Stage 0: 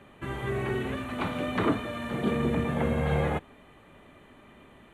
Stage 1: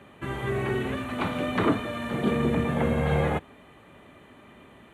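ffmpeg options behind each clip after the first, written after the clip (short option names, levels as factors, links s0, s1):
-af "highpass=58,volume=1.33"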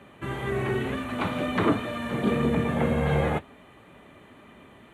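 -af "flanger=delay=4:depth=5.9:regen=-63:speed=2:shape=sinusoidal,volume=1.68"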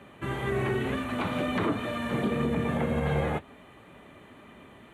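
-af "alimiter=limit=0.119:level=0:latency=1:release=128"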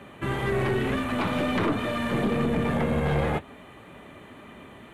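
-af "aeval=exprs='(tanh(15.8*val(0)+0.3)-tanh(0.3))/15.8':c=same,volume=1.88"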